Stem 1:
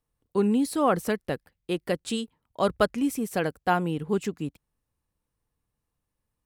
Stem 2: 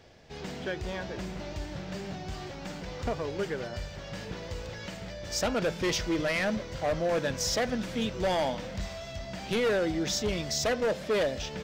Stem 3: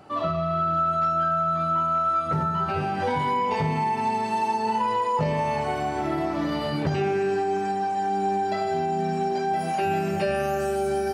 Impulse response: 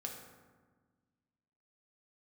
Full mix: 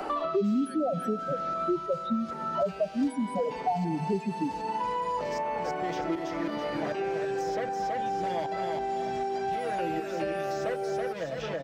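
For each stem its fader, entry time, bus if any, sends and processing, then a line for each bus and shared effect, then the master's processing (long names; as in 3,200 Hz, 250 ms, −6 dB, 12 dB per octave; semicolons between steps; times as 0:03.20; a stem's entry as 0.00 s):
+3.0 dB, 0.00 s, send −13 dB, no echo send, spectral peaks only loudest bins 2
−11.5 dB, 0.00 s, no send, echo send −4.5 dB, high-pass filter 59 Hz; comb filter 6.1 ms; tremolo with a ramp in dB swelling 1.3 Hz, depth 18 dB
−13.5 dB, 0.00 s, no send, no echo send, high-pass filter 270 Hz 24 dB per octave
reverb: on, RT60 1.4 s, pre-delay 3 ms
echo: repeating echo 327 ms, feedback 30%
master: multiband upward and downward compressor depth 100%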